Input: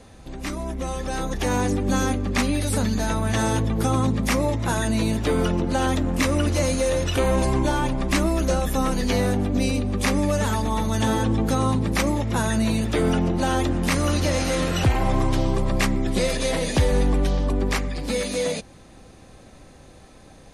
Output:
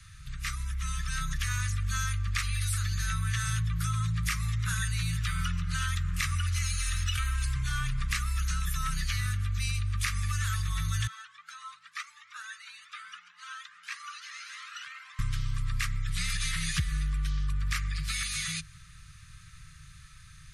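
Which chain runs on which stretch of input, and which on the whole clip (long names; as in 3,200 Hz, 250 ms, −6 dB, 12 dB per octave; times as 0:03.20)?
0:06.56–0:07.54: notch filter 1,100 Hz, Q 13 + comb filter 3.1 ms, depth 55% + background noise pink −56 dBFS
0:11.07–0:15.19: four-pole ladder high-pass 570 Hz, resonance 30% + high-frequency loss of the air 74 metres + flanger whose copies keep moving one way rising 1.7 Hz
whole clip: Chebyshev band-stop filter 160–1,200 Hz, order 5; downward compressor, threshold −26 dBFS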